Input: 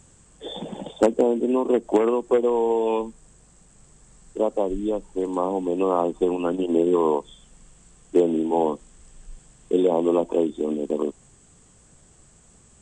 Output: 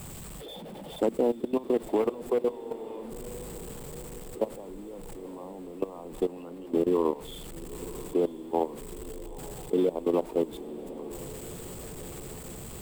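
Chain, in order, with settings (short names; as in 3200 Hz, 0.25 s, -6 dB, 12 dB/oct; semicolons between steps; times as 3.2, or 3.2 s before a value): zero-crossing step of -31 dBFS; fifteen-band EQ 160 Hz +3 dB, 1600 Hz -4 dB, 6300 Hz -9 dB; level quantiser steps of 19 dB; diffused feedback echo 0.942 s, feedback 64%, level -15.5 dB; gain -4 dB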